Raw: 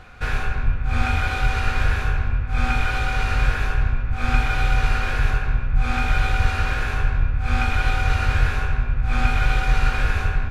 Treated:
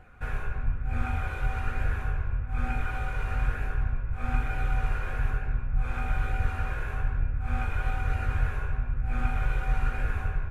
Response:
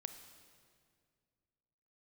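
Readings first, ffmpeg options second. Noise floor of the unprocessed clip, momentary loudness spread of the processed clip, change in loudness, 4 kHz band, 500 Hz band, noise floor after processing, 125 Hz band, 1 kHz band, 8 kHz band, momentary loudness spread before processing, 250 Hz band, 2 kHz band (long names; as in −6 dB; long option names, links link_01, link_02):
−26 dBFS, 3 LU, −8.5 dB, −18.5 dB, −8.5 dB, −35 dBFS, −7.5 dB, −10.0 dB, can't be measured, 4 LU, −8.5 dB, −11.5 dB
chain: -af "equalizer=frequency=4500:width_type=o:width=1.4:gain=-14.5,flanger=delay=0.4:depth=1.6:regen=-65:speed=1.1:shape=sinusoidal,volume=-4dB"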